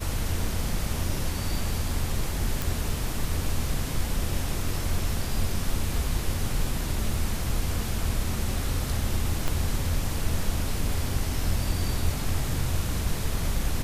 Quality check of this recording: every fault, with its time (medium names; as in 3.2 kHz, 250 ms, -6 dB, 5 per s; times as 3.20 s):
2.62 s: pop
9.48 s: pop -13 dBFS